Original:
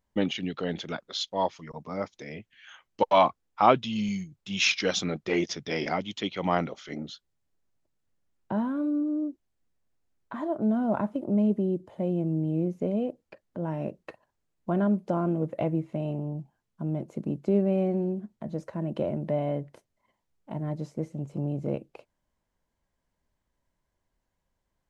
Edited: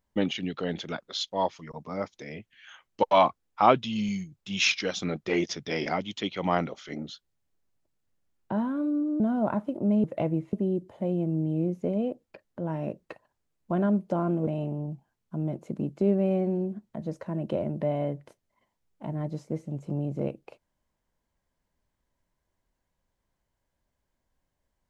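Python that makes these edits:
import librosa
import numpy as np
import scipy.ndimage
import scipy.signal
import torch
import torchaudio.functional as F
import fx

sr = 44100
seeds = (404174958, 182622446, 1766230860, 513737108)

y = fx.edit(x, sr, fx.fade_out_to(start_s=4.69, length_s=0.33, floor_db=-7.5),
    fx.cut(start_s=9.2, length_s=1.47),
    fx.move(start_s=15.45, length_s=0.49, to_s=11.51), tone=tone)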